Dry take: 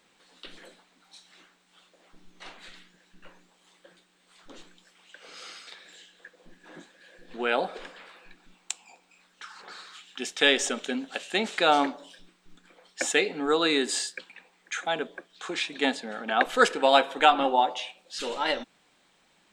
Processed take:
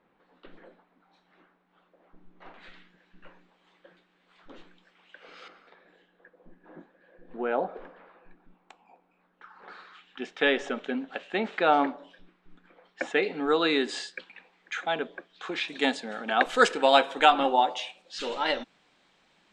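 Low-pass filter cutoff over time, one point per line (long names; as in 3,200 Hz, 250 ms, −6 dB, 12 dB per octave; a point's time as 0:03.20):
1,300 Hz
from 0:02.54 2,600 Hz
from 0:05.48 1,100 Hz
from 0:09.62 2,100 Hz
from 0:13.23 3,800 Hz
from 0:15.68 8,700 Hz
from 0:18.02 5,400 Hz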